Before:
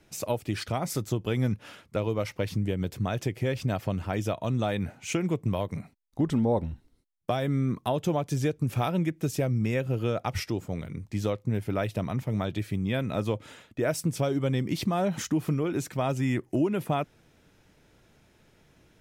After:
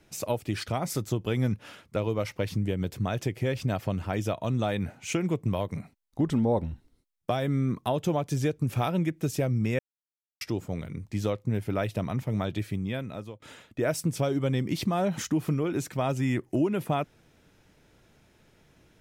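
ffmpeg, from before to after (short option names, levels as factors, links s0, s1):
-filter_complex "[0:a]asplit=4[s0][s1][s2][s3];[s0]atrim=end=9.79,asetpts=PTS-STARTPTS,afade=t=out:st=9.786:d=0.004:c=hsin[s4];[s1]atrim=start=9.79:end=10.41,asetpts=PTS-STARTPTS,volume=0[s5];[s2]atrim=start=10.41:end=13.42,asetpts=PTS-STARTPTS,afade=t=in:d=0.004:c=hsin,afade=t=out:st=2.22:d=0.79:silence=0.0749894[s6];[s3]atrim=start=13.42,asetpts=PTS-STARTPTS,afade=t=in:d=0.004:c=hsin:silence=0.0749894[s7];[s4][s5][s6][s7]concat=n=4:v=0:a=1"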